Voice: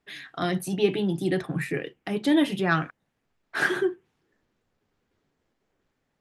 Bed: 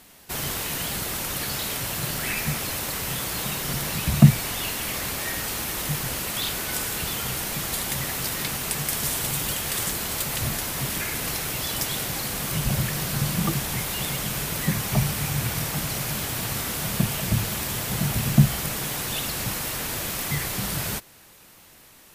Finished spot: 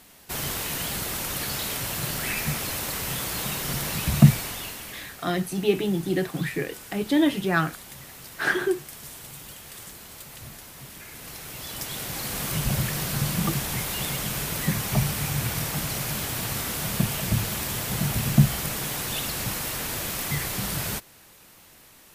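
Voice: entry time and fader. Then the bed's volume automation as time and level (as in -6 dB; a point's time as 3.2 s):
4.85 s, +0.5 dB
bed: 4.3 s -1 dB
5.2 s -15 dB
10.97 s -15 dB
12.39 s -1 dB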